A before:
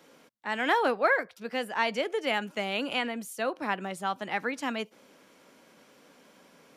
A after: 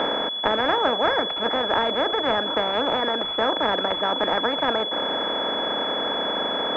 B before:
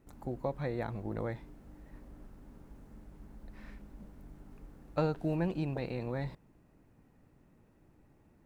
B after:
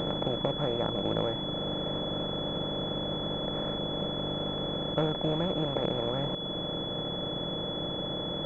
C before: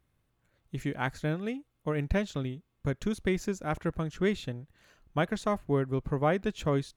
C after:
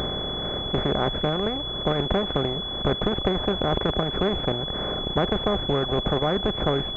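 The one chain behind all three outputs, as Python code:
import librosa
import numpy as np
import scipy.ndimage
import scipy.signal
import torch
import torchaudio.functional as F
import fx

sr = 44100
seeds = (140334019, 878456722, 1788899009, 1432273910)

y = fx.bin_compress(x, sr, power=0.2)
y = fx.dereverb_blind(y, sr, rt60_s=0.97)
y = fx.pwm(y, sr, carrier_hz=3400.0)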